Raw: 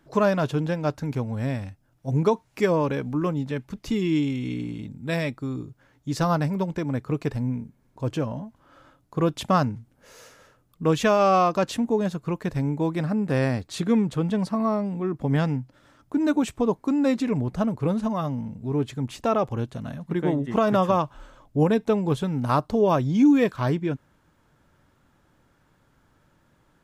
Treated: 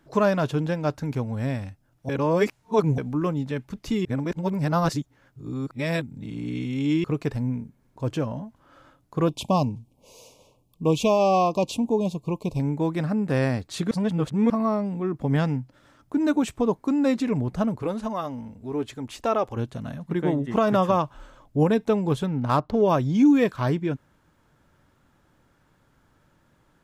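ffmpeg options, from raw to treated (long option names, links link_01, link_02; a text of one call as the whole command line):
ffmpeg -i in.wav -filter_complex "[0:a]asettb=1/sr,asplit=3[link_01][link_02][link_03];[link_01]atrim=end=9.284[link_04];[link_02]atrim=start=9.28:end=12.6,asetpts=PTS-STARTPTS,afade=type=in:duration=0.004:curve=qsin,afade=type=out:start_time=3.316:duration=0.004:curve=qsin,asuperstop=centerf=1600:order=12:qfactor=1.3[link_05];[link_03]atrim=start=12.596[link_06];[link_04][link_05]acrossfade=duration=0.004:curve1=hsin:curve2=qsin[link_07];[link_07][link_06]acrossfade=duration=0.004:curve1=qsin:curve2=hsin,asettb=1/sr,asplit=3[link_08][link_09][link_10];[link_08]atrim=end=17.824[link_11];[link_09]atrim=start=17.82:end=19.56,asetpts=PTS-STARTPTS,afade=type=in:duration=0.004:curve=qsin,afade=type=out:start_time=1.736:duration=0.004:curve=qsin,equalizer=frequency=150:width=1.5:gain=-12.5[link_12];[link_10]atrim=start=19.556[link_13];[link_11][link_12]acrossfade=duration=0.004:curve1=hsin:curve2=qsin[link_14];[link_14][link_13]acrossfade=duration=0.004:curve1=qsin:curve2=hsin,asettb=1/sr,asplit=3[link_15][link_16][link_17];[link_15]atrim=end=22.264[link_18];[link_16]atrim=start=22.26:end=22.82,asetpts=PTS-STARTPTS,afade=type=in:duration=0.004:curve=qsin,afade=type=out:start_time=0.556:duration=0.004:curve=qsin,adynamicsmooth=sensitivity=6.5:basefreq=2800[link_19];[link_17]atrim=start=22.816[link_20];[link_18][link_19]acrossfade=duration=0.004:curve1=hsin:curve2=qsin[link_21];[link_21][link_20]acrossfade=duration=0.004:curve1=qsin:curve2=hsin,asplit=7[link_22][link_23][link_24][link_25][link_26][link_27][link_28];[link_22]atrim=end=2.092[link_29];[link_23]atrim=start=2.088:end=2.982,asetpts=PTS-STARTPTS,areverse[link_30];[link_24]atrim=start=2.978:end=4.052[link_31];[link_25]atrim=start=4.048:end=7.042,asetpts=PTS-STARTPTS,areverse[link_32];[link_26]atrim=start=7.038:end=13.912[link_33];[link_27]atrim=start=13.908:end=14.502,asetpts=PTS-STARTPTS,areverse[link_34];[link_28]atrim=start=14.498[link_35];[link_29][link_30]acrossfade=duration=0.004:curve1=hsin:curve2=hsin[link_36];[link_36][link_31]acrossfade=duration=0.004:curve1=hsin:curve2=hsin[link_37];[link_37][link_32]acrossfade=duration=0.004:curve1=hsin:curve2=hsin[link_38];[link_38][link_33]acrossfade=duration=0.004:curve1=hsin:curve2=hsin[link_39];[link_39][link_34]acrossfade=duration=0.004:curve1=hsin:curve2=hsin[link_40];[link_40][link_35]acrossfade=duration=0.004:curve1=hsin:curve2=hsin" out.wav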